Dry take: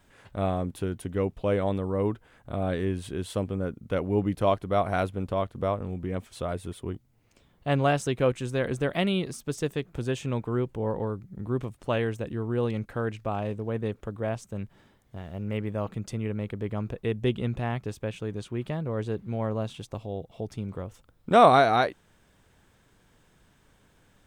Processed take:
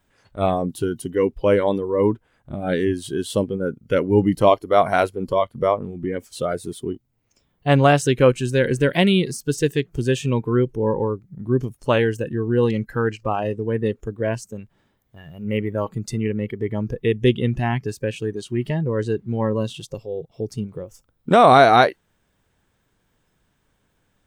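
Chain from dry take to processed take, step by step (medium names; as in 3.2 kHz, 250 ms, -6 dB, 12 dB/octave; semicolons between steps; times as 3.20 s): spectral noise reduction 15 dB; loudness maximiser +10.5 dB; trim -1 dB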